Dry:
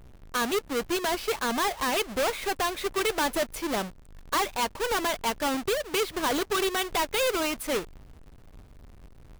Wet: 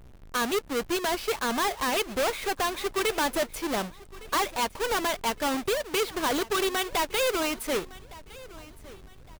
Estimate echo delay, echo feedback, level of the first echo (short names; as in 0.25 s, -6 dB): 1.161 s, 35%, -20.0 dB